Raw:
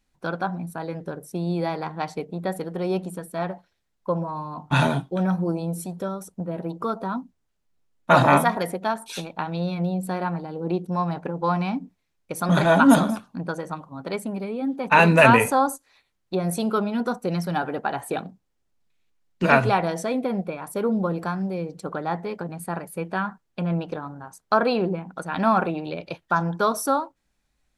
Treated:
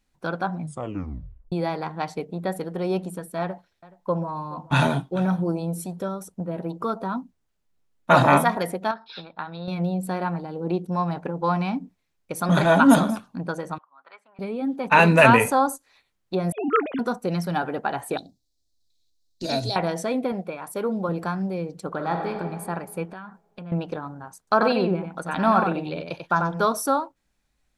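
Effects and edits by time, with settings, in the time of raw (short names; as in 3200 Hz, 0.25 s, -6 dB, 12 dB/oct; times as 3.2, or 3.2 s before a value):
0.59 tape stop 0.93 s
3.4–5.57 echo 0.424 s -21 dB
8.91–9.68 rippled Chebyshev low-pass 5300 Hz, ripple 9 dB
13.78–14.39 ladder band-pass 1500 Hz, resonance 35%
16.52–16.99 sine-wave speech
18.17–19.76 EQ curve 100 Hz 0 dB, 190 Hz -16 dB, 280 Hz -1 dB, 440 Hz -11 dB, 670 Hz -6 dB, 1200 Hz -27 dB, 1900 Hz -17 dB, 2800 Hz -13 dB, 4000 Hz +12 dB, 10000 Hz +2 dB
20.32–21.09 low shelf 250 Hz -7.5 dB
21.89–22.3 reverb throw, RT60 1.9 s, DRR 2.5 dB
23.05–23.72 compressor 4:1, threshold -37 dBFS
24.38–26.66 echo 92 ms -6 dB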